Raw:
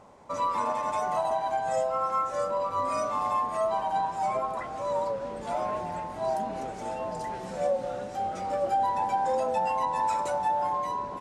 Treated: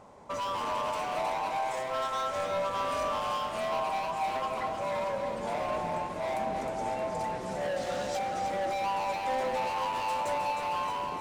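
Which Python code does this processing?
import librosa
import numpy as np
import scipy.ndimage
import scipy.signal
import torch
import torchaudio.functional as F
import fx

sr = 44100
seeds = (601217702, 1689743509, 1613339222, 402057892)

y = fx.highpass(x, sr, hz=540.0, slope=12, at=(1.56, 2.13))
y = fx.peak_eq(y, sr, hz=4700.0, db=13.5, octaves=2.8, at=(7.76, 8.19))
y = np.clip(y, -10.0 ** (-31.0 / 20.0), 10.0 ** (-31.0 / 20.0))
y = fx.echo_alternate(y, sr, ms=156, hz=960.0, feedback_pct=79, wet_db=-5)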